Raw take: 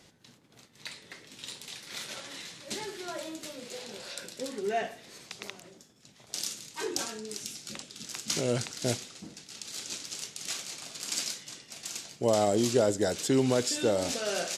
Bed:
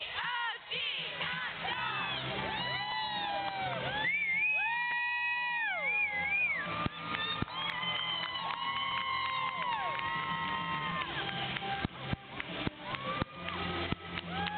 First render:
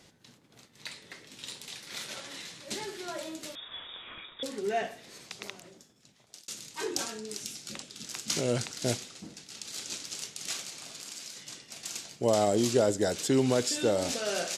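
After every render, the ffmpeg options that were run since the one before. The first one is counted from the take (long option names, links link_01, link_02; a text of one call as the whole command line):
ffmpeg -i in.wav -filter_complex "[0:a]asettb=1/sr,asplit=3[link_01][link_02][link_03];[link_01]atrim=end=3.554[link_04];[link_02]atrim=start=3.55:end=4.43,asetpts=PTS-STARTPTS,afade=type=in:duration=0.004:curve=qsin,afade=type=out:start_time=0.876:duration=0.004:curve=qsin,lowpass=frequency=3300:width_type=q:width=0.5098,lowpass=frequency=3300:width_type=q:width=0.6013,lowpass=frequency=3300:width_type=q:width=0.9,lowpass=frequency=3300:width_type=q:width=2.563,afreqshift=-3900[link_05];[link_03]atrim=start=4.426[link_06];[link_04][link_05]acrossfade=duration=0.004:curve1=hsin:curve2=qsin[link_07];[link_07][link_06]acrossfade=duration=0.004:curve1=qsin:curve2=hsin,asettb=1/sr,asplit=3[link_08][link_09][link_10];[link_08]atrim=end=10.694[link_11];[link_09]atrim=start=10.69:end=11.37,asetpts=PTS-STARTPTS,afade=type=in:duration=0.004:curve=qsin,afade=type=out:start_time=0.676:duration=0.004:curve=qsin,acompressor=threshold=-39dB:ratio=6:attack=3.2:release=140:knee=1:detection=peak[link_12];[link_10]atrim=start=11.366[link_13];[link_11][link_12]acrossfade=duration=0.004:curve1=hsin:curve2=qsin[link_14];[link_14][link_13]acrossfade=duration=0.004:curve1=qsin:curve2=hsin,asplit=2[link_15][link_16];[link_15]atrim=end=6.48,asetpts=PTS-STARTPTS,afade=type=out:start_time=5.53:duration=0.95:curve=qsin[link_17];[link_16]atrim=start=6.48,asetpts=PTS-STARTPTS,afade=type=in:duration=0.004:curve=hsin[link_18];[link_17][link_18]concat=n=2:v=0:a=1" out.wav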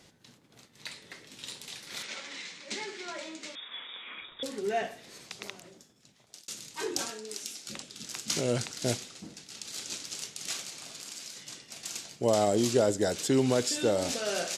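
ffmpeg -i in.wav -filter_complex "[0:a]asplit=3[link_01][link_02][link_03];[link_01]afade=type=out:start_time=2.02:duration=0.02[link_04];[link_02]highpass=frequency=190:width=0.5412,highpass=frequency=190:width=1.3066,equalizer=frequency=340:width_type=q:width=4:gain=-4,equalizer=frequency=650:width_type=q:width=4:gain=-5,equalizer=frequency=2200:width_type=q:width=4:gain=7,lowpass=frequency=7600:width=0.5412,lowpass=frequency=7600:width=1.3066,afade=type=in:start_time=2.02:duration=0.02,afade=type=out:start_time=4.2:duration=0.02[link_05];[link_03]afade=type=in:start_time=4.2:duration=0.02[link_06];[link_04][link_05][link_06]amix=inputs=3:normalize=0,asettb=1/sr,asplit=3[link_07][link_08][link_09];[link_07]atrim=end=7.104[link_10];[link_08]atrim=start=7.1:end=7.68,asetpts=PTS-STARTPTS,afade=type=in:duration=0.004:curve=qsin,afade=type=out:start_time=0.576:duration=0.004:curve=qsin,highpass=300[link_11];[link_09]atrim=start=7.676[link_12];[link_10][link_11]acrossfade=duration=0.004:curve1=hsin:curve2=qsin[link_13];[link_13][link_12]acrossfade=duration=0.004:curve1=qsin:curve2=hsin" out.wav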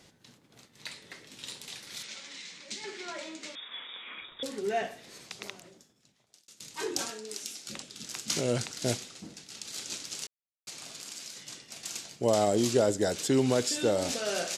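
ffmpeg -i in.wav -filter_complex "[0:a]asettb=1/sr,asplit=3[link_01][link_02][link_03];[link_01]atrim=end=1.874[link_04];[link_02]atrim=start=1.87:end=2.84,asetpts=PTS-STARTPTS,afade=type=in:duration=0.004:curve=qsin,afade=type=out:start_time=0.966:duration=0.004:curve=qsin,acrossover=split=200|3000[link_05][link_06][link_07];[link_06]acompressor=threshold=-50dB:ratio=4:attack=3.2:release=140:knee=2.83:detection=peak[link_08];[link_05][link_08][link_07]amix=inputs=3:normalize=0[link_09];[link_03]atrim=start=2.836[link_10];[link_04][link_09]acrossfade=duration=0.004:curve1=hsin:curve2=qsin[link_11];[link_11][link_10]acrossfade=duration=0.004:curve1=qsin:curve2=hsin,asplit=4[link_12][link_13][link_14][link_15];[link_12]atrim=end=6.6,asetpts=PTS-STARTPTS,afade=type=out:start_time=5.48:duration=1.12:silence=0.11885[link_16];[link_13]atrim=start=6.6:end=10.27,asetpts=PTS-STARTPTS,afade=type=in:duration=0.004:curve=hsin:silence=0.11885,afade=type=out:start_time=3.666:duration=0.004:curve=hsin[link_17];[link_14]atrim=start=10.27:end=10.67,asetpts=PTS-STARTPTS,volume=0[link_18];[link_15]atrim=start=10.67,asetpts=PTS-STARTPTS,afade=type=in:duration=0.004:curve=hsin[link_19];[link_16][link_17][link_18][link_19]concat=n=4:v=0:a=1" out.wav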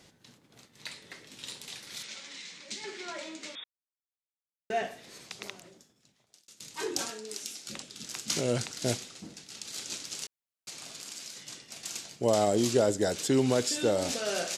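ffmpeg -i in.wav -filter_complex "[0:a]asplit=3[link_01][link_02][link_03];[link_01]atrim=end=3.64,asetpts=PTS-STARTPTS,afade=type=out:start_time=3.636:duration=0.004:curve=hsin[link_04];[link_02]atrim=start=3.64:end=4.7,asetpts=PTS-STARTPTS,volume=0[link_05];[link_03]atrim=start=4.7,asetpts=PTS-STARTPTS,afade=type=in:duration=0.004:curve=hsin[link_06];[link_04][link_05][link_06]concat=n=3:v=0:a=1" out.wav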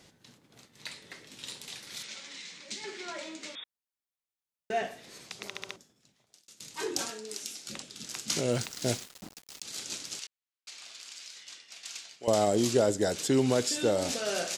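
ffmpeg -i in.wav -filter_complex "[0:a]asettb=1/sr,asplit=3[link_01][link_02][link_03];[link_01]atrim=end=8.524[link_04];[link_02]atrim=start=8.52:end=9.63,asetpts=PTS-STARTPTS,afade=type=in:duration=0.004:curve=qsin,afade=type=out:start_time=1.106:duration=0.004:curve=qsin,aeval=exprs='val(0)*gte(abs(val(0)),0.0075)':channel_layout=same[link_05];[link_03]atrim=start=9.626[link_06];[link_04][link_05]acrossfade=duration=0.004:curve1=hsin:curve2=qsin[link_07];[link_07][link_06]acrossfade=duration=0.004:curve1=qsin:curve2=hsin,asettb=1/sr,asplit=3[link_08][link_09][link_10];[link_08]atrim=end=10.194[link_11];[link_09]atrim=start=10.19:end=12.28,asetpts=PTS-STARTPTS,afade=type=in:duration=0.004:curve=qsin,afade=type=out:start_time=2.086:duration=0.004:curve=qsin,bandpass=frequency=2800:width_type=q:width=0.64[link_12];[link_10]atrim=start=12.276[link_13];[link_11][link_12]acrossfade=duration=0.004:curve1=hsin:curve2=qsin[link_14];[link_14][link_13]acrossfade=duration=0.004:curve1=qsin:curve2=hsin,asplit=5[link_15][link_16][link_17][link_18][link_19];[link_15]atrim=end=5.552[link_20];[link_16]atrim=start=5.478:end=5.552[link_21];[link_17]atrim=start=5.478:end=5.552[link_22];[link_18]atrim=start=5.478:end=5.552[link_23];[link_19]atrim=start=5.758[link_24];[link_20][link_21]acrossfade=duration=0.004:curve1=hsin:curve2=hsin[link_25];[link_25][link_22]acrossfade=duration=0.004:curve1=hsin:curve2=hsin[link_26];[link_26][link_23]acrossfade=duration=0.004:curve1=hsin:curve2=hsin[link_27];[link_27][link_24]acrossfade=duration=0.004:curve1=hsin:curve2=hsin" out.wav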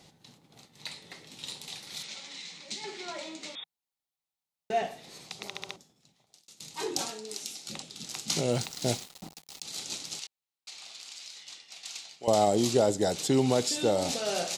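ffmpeg -i in.wav -af "equalizer=frequency=160:width_type=o:width=0.33:gain=6,equalizer=frequency=800:width_type=o:width=0.33:gain=7,equalizer=frequency=1600:width_type=o:width=0.33:gain=-6,equalizer=frequency=4000:width_type=o:width=0.33:gain=4" out.wav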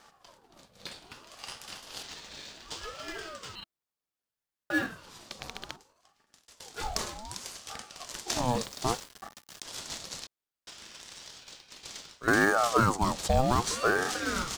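ffmpeg -i in.wav -filter_complex "[0:a]asplit=2[link_01][link_02];[link_02]acrusher=samples=11:mix=1:aa=0.000001,volume=-8dB[link_03];[link_01][link_03]amix=inputs=2:normalize=0,aeval=exprs='val(0)*sin(2*PI*680*n/s+680*0.5/0.64*sin(2*PI*0.64*n/s))':channel_layout=same" out.wav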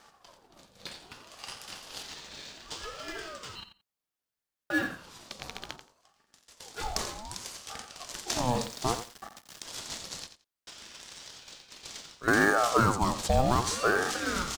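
ffmpeg -i in.wav -af "aecho=1:1:87|174:0.282|0.0451" out.wav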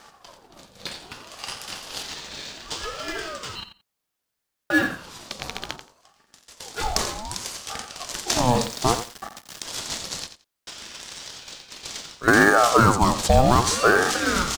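ffmpeg -i in.wav -af "volume=8.5dB,alimiter=limit=-3dB:level=0:latency=1" out.wav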